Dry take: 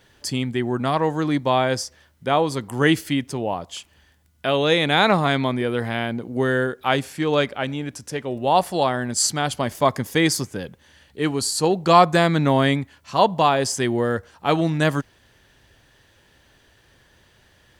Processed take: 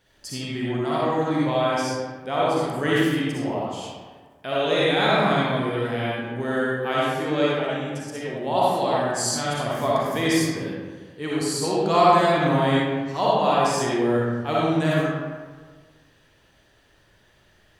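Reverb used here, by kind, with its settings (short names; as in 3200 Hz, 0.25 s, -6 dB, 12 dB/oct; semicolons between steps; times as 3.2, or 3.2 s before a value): digital reverb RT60 1.5 s, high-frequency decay 0.55×, pre-delay 20 ms, DRR -7 dB; gain -9.5 dB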